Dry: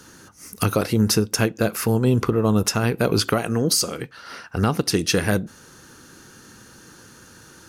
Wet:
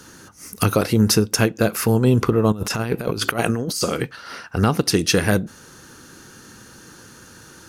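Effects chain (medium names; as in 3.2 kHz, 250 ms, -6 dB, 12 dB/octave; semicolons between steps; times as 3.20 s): 2.52–4.16 s: compressor with a negative ratio -24 dBFS, ratio -0.5; trim +2.5 dB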